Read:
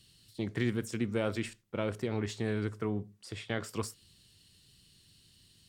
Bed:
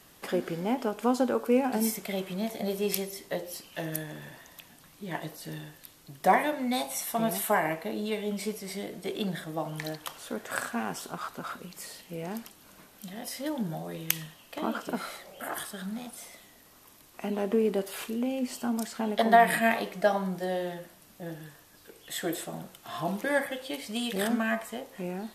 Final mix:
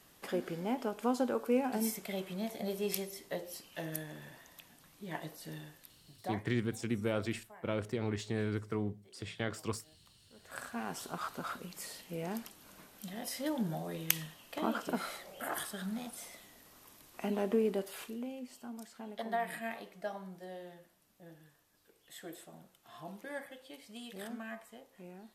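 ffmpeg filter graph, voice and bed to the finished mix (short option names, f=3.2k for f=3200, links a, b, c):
-filter_complex "[0:a]adelay=5900,volume=-2dB[a];[1:a]volume=21.5dB,afade=t=out:st=5.72:d=0.72:silence=0.0630957,afade=t=in:st=10.32:d=0.88:silence=0.0421697,afade=t=out:st=17.25:d=1.23:silence=0.223872[b];[a][b]amix=inputs=2:normalize=0"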